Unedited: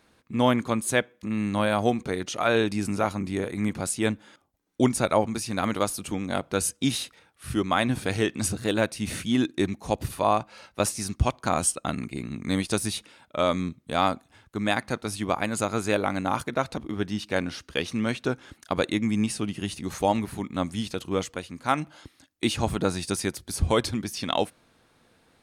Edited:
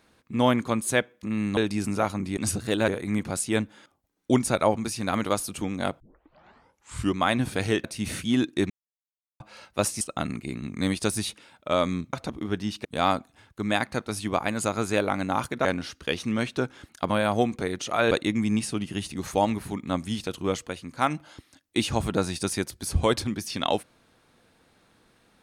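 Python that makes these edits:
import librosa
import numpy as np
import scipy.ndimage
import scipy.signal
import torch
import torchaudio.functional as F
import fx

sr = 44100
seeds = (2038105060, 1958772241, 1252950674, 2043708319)

y = fx.edit(x, sr, fx.move(start_s=1.57, length_s=1.01, to_s=18.78),
    fx.tape_start(start_s=6.5, length_s=1.16),
    fx.move(start_s=8.34, length_s=0.51, to_s=3.38),
    fx.silence(start_s=9.71, length_s=0.7),
    fx.cut(start_s=11.02, length_s=0.67),
    fx.move(start_s=16.61, length_s=0.72, to_s=13.81), tone=tone)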